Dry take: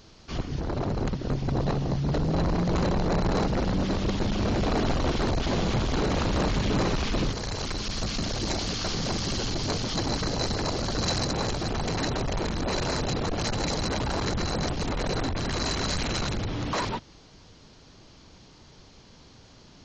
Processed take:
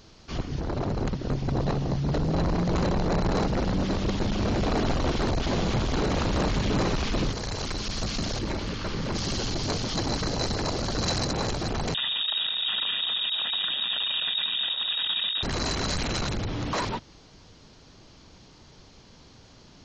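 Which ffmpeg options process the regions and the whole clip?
-filter_complex "[0:a]asettb=1/sr,asplit=3[a][b][c];[a]atrim=end=8.394[d];[b]atrim=start=8.39:end=9.15,asetpts=PTS-STARTPTS,afade=t=in:d=0.004:c=qsin,afade=t=out:st=0.756:d=0.004:c=qsin,bandreject=f=720:w=5.3,acrossover=split=3100[e][f];[f]acompressor=threshold=-46dB:ratio=4:attack=1:release=60[g];[e][g]amix=inputs=2:normalize=0[h];[c]atrim=start=9.146[i];[d][h]acrossfade=d=0.004:c1=hsin:c2=qsin[j];[j][i]acrossfade=d=0.004:c1=qsin:c2=hsin,asettb=1/sr,asplit=3[k][l][m];[k]atrim=end=11.944[n];[l]atrim=start=11.94:end=15.43,asetpts=PTS-STARTPTS,afade=t=in:d=0.004:c=qsin,afade=t=out:st=3.486:d=0.004:c=qsin,asuperstop=centerf=1600:order=20:qfactor=5,lowpass=f=3.2k:t=q:w=0.5098,lowpass=f=3.2k:t=q:w=0.6013,lowpass=f=3.2k:t=q:w=0.9,lowpass=f=3.2k:t=q:w=2.563,afreqshift=-3800[o];[m]atrim=start=15.426[p];[n][o]acrossfade=d=0.004:c1=hsin:c2=qsin[q];[q][p]acrossfade=d=0.004:c1=qsin:c2=hsin"

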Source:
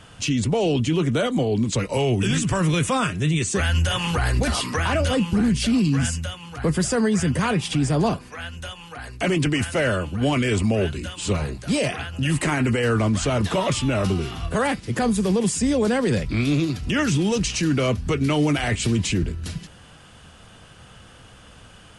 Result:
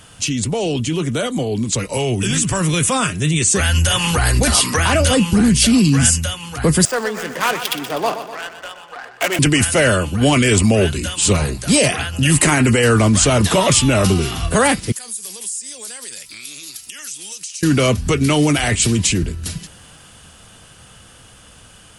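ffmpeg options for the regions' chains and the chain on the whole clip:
-filter_complex "[0:a]asettb=1/sr,asplit=3[a][b][c];[a]atrim=end=6.854[d];[b]atrim=start=6.85:end=9.39,asetpts=PTS-STARTPTS,afade=t=in:d=0.004:c=qsin,afade=t=out:st=2.536:d=0.004:c=qsin,highpass=580,adynamicsmooth=sensitivity=3:basefreq=960,aecho=1:1:124|248|372|496|620|744|868:0.299|0.173|0.1|0.0582|0.0338|0.0196|0.0114,atrim=end_sample=112014[e];[c]atrim=start=9.386[f];[d][e]acrossfade=d=0.004:c1=hsin:c2=qsin[g];[g][f]acrossfade=d=0.004:c1=qsin:c2=hsin,asettb=1/sr,asplit=3[h][i][j];[h]atrim=end=14.924[k];[i]atrim=start=14.92:end=17.63,asetpts=PTS-STARTPTS,afade=t=in:d=0.004:c=qsin,afade=t=out:st=2.706:d=0.004:c=qsin,aderivative,acompressor=threshold=-41dB:ratio=6:attack=3.2:release=140:knee=1:detection=peak[l];[j]atrim=start=17.626[m];[k][l]acrossfade=d=0.004:c1=hsin:c2=qsin[n];[n][m]acrossfade=d=0.004:c1=qsin:c2=hsin,aemphasis=mode=production:type=50fm,dynaudnorm=f=340:g=21:m=8.5dB,volume=1dB"

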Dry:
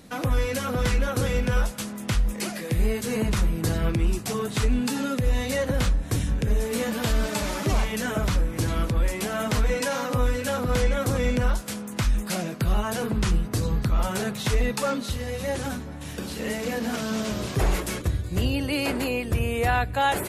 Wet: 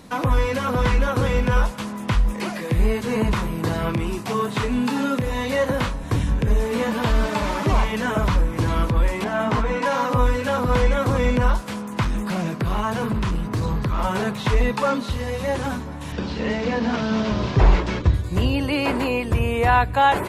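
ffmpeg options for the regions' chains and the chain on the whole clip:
-filter_complex "[0:a]asettb=1/sr,asplit=3[a][b][c];[a]atrim=end=3.334[d];[b]atrim=start=3.33:end=6.03,asetpts=PTS-STARTPTS,afade=t=in:d=0.004:c=qsin,afade=t=out:st=2.696:d=0.004:c=qsin,highpass=f=140:p=1,highshelf=f=11k:g=7.5,asplit=2[e][f];[f]adelay=29,volume=-11dB[g];[e][g]amix=inputs=2:normalize=0,atrim=end_sample=119070[h];[c]atrim=start=6.026[i];[d][h]acrossfade=d=0.004:c1=hsin:c2=qsin[j];[j][i]acrossfade=d=0.004:c1=qsin:c2=hsin,asettb=1/sr,asplit=3[k][l][m];[k]atrim=end=9.244[n];[l]atrim=start=9.24:end=9.86,asetpts=PTS-STARTPTS,afade=t=in:d=0.004:c=qsin,afade=t=out:st=0.616:d=0.004:c=qsin,lowpass=f=2k:p=1,lowshelf=f=71:g=-11.5,asplit=2[o][p];[p]adelay=17,volume=-4dB[q];[o][q]amix=inputs=2:normalize=0,atrim=end_sample=27342[r];[m]atrim=start=9.856[s];[n][r]acrossfade=d=0.004:c1=hsin:c2=qsin[t];[t][s]acrossfade=d=0.004:c1=qsin:c2=hsin,asettb=1/sr,asplit=3[u][v][w];[u]atrim=end=12.044[x];[v]atrim=start=12.04:end=14.04,asetpts=PTS-STARTPTS,afade=t=in:d=0.004:c=qsin,afade=t=out:st=1.996:d=0.004:c=qsin,equalizer=f=240:w=0.32:g=9,acrossover=split=140|1000[y][z][aa];[y]acompressor=threshold=-26dB:ratio=4[ab];[z]acompressor=threshold=-32dB:ratio=4[ac];[aa]acompressor=threshold=-31dB:ratio=4[ad];[ab][ac][ad]amix=inputs=3:normalize=0,volume=22.5dB,asoftclip=hard,volume=-22.5dB[ae];[w]atrim=start=14.036[af];[x][ae]acrossfade=d=0.004:c1=hsin:c2=qsin[ag];[ag][af]acrossfade=d=0.004:c1=qsin:c2=hsin,asettb=1/sr,asplit=3[ah][ai][aj];[ah]atrim=end=16.124[ak];[ai]atrim=start=16.12:end=18.14,asetpts=PTS-STARTPTS,afade=t=in:d=0.004:c=qsin,afade=t=out:st=2.016:d=0.004:c=qsin,lowpass=f=5.4k:w=0.5412,lowpass=f=5.4k:w=1.3066,lowshelf=f=170:g=5.5,bandreject=f=1.1k:w=25[al];[aj]atrim=start=18.136[am];[ak][al]acrossfade=d=0.004:c1=hsin:c2=qsin[an];[an][am]acrossfade=d=0.004:c1=qsin:c2=hsin,equalizer=f=1k:w=4:g=8.5,acrossover=split=3900[ao][ap];[ap]acompressor=threshold=-44dB:ratio=4:attack=1:release=60[aq];[ao][aq]amix=inputs=2:normalize=0,highshelf=f=9.1k:g=-5,volume=4dB"

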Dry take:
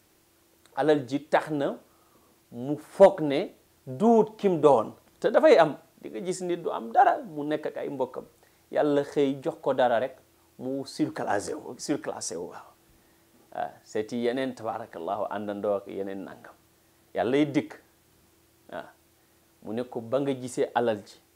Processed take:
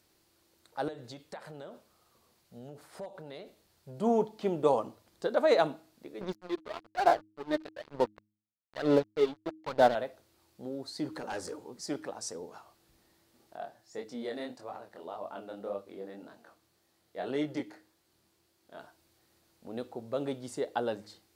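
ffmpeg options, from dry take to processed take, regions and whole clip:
-filter_complex "[0:a]asettb=1/sr,asplit=3[a][b][c];[a]atrim=end=0.884[d];[b]atrim=start=0.88:end=3.98,asetpts=PTS-STARTPTS,afade=t=in:d=0.004:c=qsin,afade=t=out:st=3.096:d=0.004:c=qsin,equalizer=f=300:t=o:w=0.35:g=-10.5,acompressor=threshold=-34dB:ratio=5:attack=3.2:release=140:knee=1:detection=peak[e];[c]atrim=start=3.976[f];[d][e]acrossfade=d=0.004:c1=hsin:c2=qsin[g];[g][f]acrossfade=d=0.004:c1=qsin:c2=hsin,asettb=1/sr,asplit=3[h][i][j];[h]atrim=end=6.214[k];[i]atrim=start=6.21:end=9.95,asetpts=PTS-STARTPTS,afade=t=in:d=0.004:c=qsin,afade=t=out:st=3.736:d=0.004:c=qsin,lowpass=f=5.4k:w=0.5412,lowpass=f=5.4k:w=1.3066,aphaser=in_gain=1:out_gain=1:delay=3.3:decay=0.66:speed=1.1:type=sinusoidal,aeval=exprs='sgn(val(0))*max(abs(val(0))-0.0316,0)':c=same[l];[j]atrim=start=9.946[m];[k][l]acrossfade=d=0.004:c1=hsin:c2=qsin[n];[n][m]acrossfade=d=0.004:c1=qsin:c2=hsin,asettb=1/sr,asplit=3[o][p][q];[o]atrim=end=11.084[r];[p]atrim=start=11.08:end=11.75,asetpts=PTS-STARTPTS,afade=t=in:d=0.004:c=qsin,afade=t=out:st=0.666:d=0.004:c=qsin,bandreject=f=680:w=5.4,asoftclip=type=hard:threshold=-24.5dB[s];[q]atrim=start=11.746[t];[r][s]acrossfade=d=0.004:c1=hsin:c2=qsin[u];[u][t]acrossfade=d=0.004:c1=qsin:c2=hsin,asettb=1/sr,asplit=3[v][w][x];[v]atrim=end=13.574[y];[w]atrim=start=13.57:end=18.8,asetpts=PTS-STARTPTS,afade=t=in:d=0.004:c=qsin,afade=t=out:st=5.226:d=0.004:c=qsin,lowshelf=f=67:g=-10,flanger=delay=20:depth=6.9:speed=1.8[z];[x]atrim=start=18.796[aa];[y][z]acrossfade=d=0.004:c1=hsin:c2=qsin[ab];[ab][aa]acrossfade=d=0.004:c1=qsin:c2=hsin,equalizer=f=4.4k:t=o:w=0.49:g=6.5,bandreject=f=105.1:t=h:w=4,bandreject=f=210.2:t=h:w=4,bandreject=f=315.3:t=h:w=4,volume=-7dB"

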